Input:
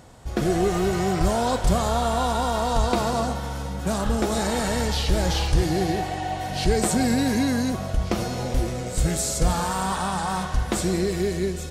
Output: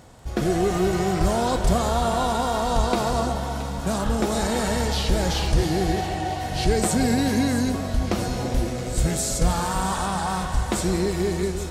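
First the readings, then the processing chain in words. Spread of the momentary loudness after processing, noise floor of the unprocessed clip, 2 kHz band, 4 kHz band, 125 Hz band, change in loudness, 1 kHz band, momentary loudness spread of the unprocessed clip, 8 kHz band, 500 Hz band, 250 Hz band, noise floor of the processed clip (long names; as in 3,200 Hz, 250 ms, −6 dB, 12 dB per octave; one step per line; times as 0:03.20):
5 LU, −32 dBFS, +0.5 dB, +0.5 dB, +0.5 dB, +0.5 dB, +0.5 dB, 5 LU, +0.5 dB, +0.5 dB, +0.5 dB, −29 dBFS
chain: delay that swaps between a low-pass and a high-pass 336 ms, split 940 Hz, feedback 72%, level −10 dB
surface crackle 17 per second −38 dBFS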